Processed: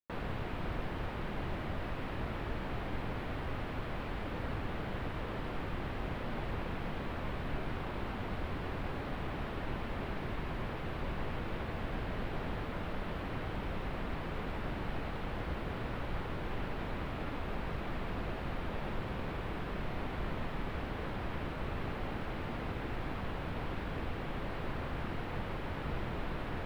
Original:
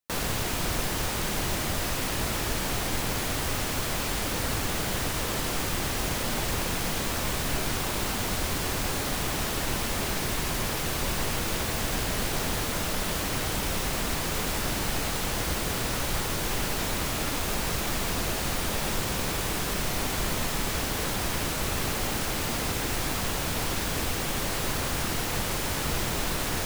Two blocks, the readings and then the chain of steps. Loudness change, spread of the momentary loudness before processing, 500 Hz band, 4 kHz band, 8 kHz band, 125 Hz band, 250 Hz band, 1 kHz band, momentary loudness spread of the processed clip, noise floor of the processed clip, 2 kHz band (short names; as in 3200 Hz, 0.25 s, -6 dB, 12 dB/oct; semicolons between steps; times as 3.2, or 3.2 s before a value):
-11.5 dB, 0 LU, -8.0 dB, -19.0 dB, -36.0 dB, -6.5 dB, -7.0 dB, -9.0 dB, 1 LU, -40 dBFS, -11.5 dB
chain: air absorption 500 m; gain -6.5 dB